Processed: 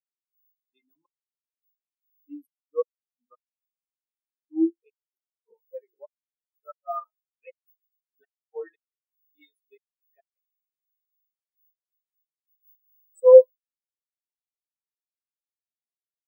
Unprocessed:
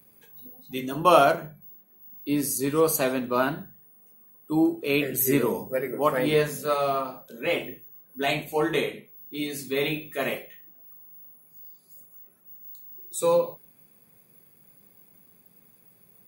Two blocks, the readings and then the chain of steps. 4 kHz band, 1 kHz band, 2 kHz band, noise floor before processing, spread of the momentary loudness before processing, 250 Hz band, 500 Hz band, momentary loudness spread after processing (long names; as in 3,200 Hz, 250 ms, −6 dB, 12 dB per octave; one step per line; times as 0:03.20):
below −40 dB, −14.5 dB, below −30 dB, −59 dBFS, 21 LU, −7.0 dB, +2.0 dB, 25 LU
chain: tilt shelving filter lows −8.5 dB, about 630 Hz
gate with flip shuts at −11 dBFS, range −40 dB
every bin expanded away from the loudest bin 4 to 1
level +7.5 dB